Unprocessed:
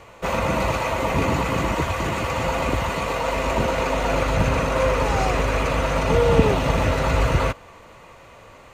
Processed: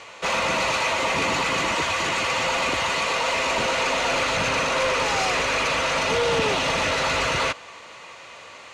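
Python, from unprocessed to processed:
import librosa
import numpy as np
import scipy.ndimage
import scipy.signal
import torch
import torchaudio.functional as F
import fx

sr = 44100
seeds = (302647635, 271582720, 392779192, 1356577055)

y = fx.highpass(x, sr, hz=330.0, slope=6)
y = fx.peak_eq(y, sr, hz=5000.0, db=13.5, octaves=2.9)
y = 10.0 ** (-17.0 / 20.0) * np.tanh(y / 10.0 ** (-17.0 / 20.0))
y = scipy.signal.sosfilt(scipy.signal.butter(2, 11000.0, 'lowpass', fs=sr, output='sos'), y)
y = fx.high_shelf(y, sr, hz=6800.0, db=-7.0)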